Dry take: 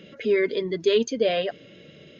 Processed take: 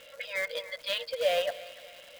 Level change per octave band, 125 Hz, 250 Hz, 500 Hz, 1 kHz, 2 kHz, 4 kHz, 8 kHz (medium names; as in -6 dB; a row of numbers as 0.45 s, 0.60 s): under -20 dB, under -30 dB, -9.0 dB, -2.5 dB, -1.5 dB, -1.5 dB, no reading